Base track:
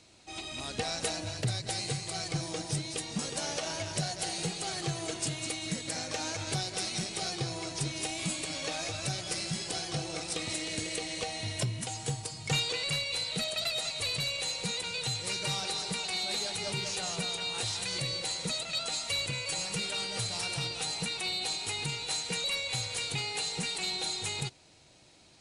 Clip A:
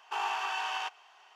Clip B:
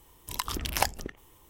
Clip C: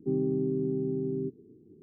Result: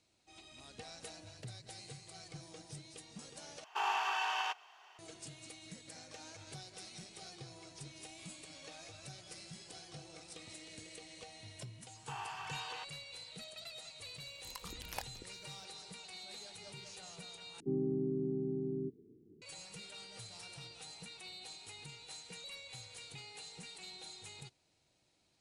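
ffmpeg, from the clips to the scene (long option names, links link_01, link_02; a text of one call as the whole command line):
ffmpeg -i bed.wav -i cue0.wav -i cue1.wav -i cue2.wav -filter_complex "[1:a]asplit=2[link_01][link_02];[0:a]volume=-16.5dB,asplit=3[link_03][link_04][link_05];[link_03]atrim=end=3.644[link_06];[link_01]atrim=end=1.35,asetpts=PTS-STARTPTS,volume=-1.5dB[link_07];[link_04]atrim=start=4.986:end=17.604[link_08];[3:a]atrim=end=1.82,asetpts=PTS-STARTPTS,volume=-6.5dB[link_09];[link_05]atrim=start=19.416[link_10];[link_02]atrim=end=1.35,asetpts=PTS-STARTPTS,volume=-11.5dB,afade=type=in:duration=0.004:curve=hsin,afade=type=out:start_time=1.346:duration=0.004:curve=hsin,adelay=11960[link_11];[2:a]atrim=end=1.49,asetpts=PTS-STARTPTS,volume=-17dB,afade=type=in:duration=0.004:curve=hsin,afade=type=out:start_time=1.486:duration=0.004:curve=hsin,adelay=14160[link_12];[link_06][link_07]acrossfade=duration=0.004:curve1=hsin:curve2=hsin[link_13];[link_13][link_08]acrossfade=duration=0.004:curve1=hsin:curve2=hsin[link_14];[link_14][link_09]acrossfade=duration=0.004:curve1=hsin:curve2=hsin[link_15];[link_15][link_10]acrossfade=duration=0.004:curve1=hsin:curve2=hsin[link_16];[link_16][link_11][link_12]amix=inputs=3:normalize=0" out.wav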